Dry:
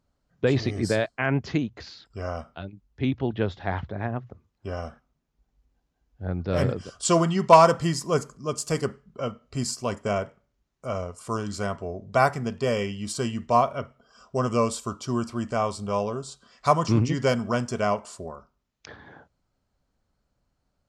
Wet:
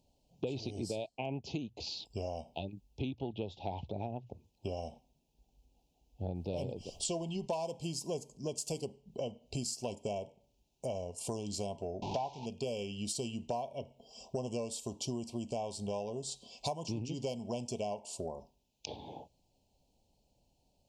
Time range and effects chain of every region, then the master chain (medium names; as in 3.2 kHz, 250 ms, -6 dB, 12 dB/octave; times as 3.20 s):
6.34–7.45 s: treble shelf 8.5 kHz -10 dB + added noise brown -53 dBFS
12.02–12.46 s: one-bit delta coder 32 kbps, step -29.5 dBFS + peaking EQ 930 Hz +12.5 dB 0.53 oct
whole clip: elliptic band-stop 880–2600 Hz, stop band 40 dB; bass shelf 290 Hz -7 dB; compression 8:1, threshold -41 dBFS; trim +6 dB